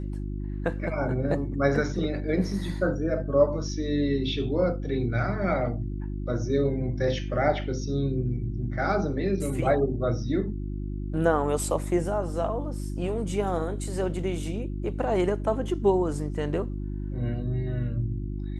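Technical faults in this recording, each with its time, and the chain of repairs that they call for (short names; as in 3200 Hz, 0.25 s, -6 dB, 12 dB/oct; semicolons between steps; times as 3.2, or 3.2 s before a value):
hum 50 Hz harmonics 7 -32 dBFS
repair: de-hum 50 Hz, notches 7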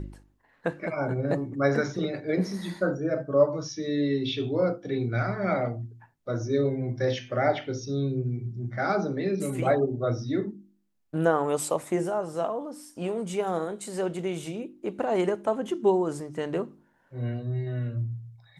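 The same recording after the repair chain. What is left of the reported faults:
none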